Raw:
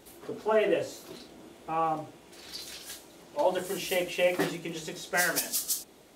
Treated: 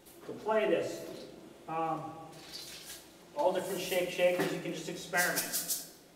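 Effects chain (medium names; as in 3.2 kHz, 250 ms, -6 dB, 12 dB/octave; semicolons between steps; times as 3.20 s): simulated room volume 1200 m³, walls mixed, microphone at 0.86 m; trim -4.5 dB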